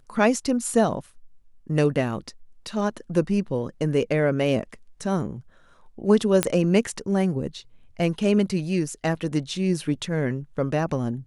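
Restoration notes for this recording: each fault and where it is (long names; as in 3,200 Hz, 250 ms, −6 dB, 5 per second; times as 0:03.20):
0:06.43: click −4 dBFS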